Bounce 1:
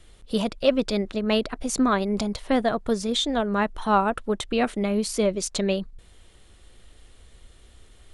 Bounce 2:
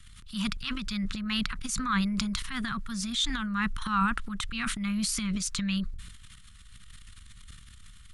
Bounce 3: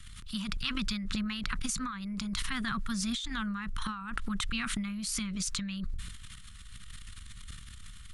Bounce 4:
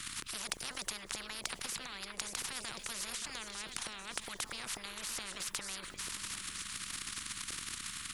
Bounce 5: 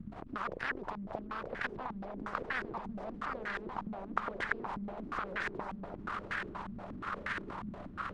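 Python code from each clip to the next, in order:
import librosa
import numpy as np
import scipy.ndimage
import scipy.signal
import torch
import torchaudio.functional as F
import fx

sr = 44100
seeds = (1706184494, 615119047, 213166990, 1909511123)

y1 = scipy.signal.sosfilt(scipy.signal.cheby1(3, 1.0, [190.0, 1200.0], 'bandstop', fs=sr, output='sos'), x)
y1 = fx.transient(y1, sr, attack_db=-7, sustain_db=10)
y2 = fx.over_compress(y1, sr, threshold_db=-34.0, ratio=-1.0)
y3 = fx.echo_feedback(y2, sr, ms=575, feedback_pct=60, wet_db=-23.0)
y3 = fx.spectral_comp(y3, sr, ratio=10.0)
y3 = y3 * 10.0 ** (1.0 / 20.0)
y4 = fx.cvsd(y3, sr, bps=64000)
y4 = fx.echo_swell(y4, sr, ms=145, loudest=8, wet_db=-17)
y4 = fx.filter_held_lowpass(y4, sr, hz=8.4, low_hz=210.0, high_hz=1700.0)
y4 = y4 * 10.0 ** (4.5 / 20.0)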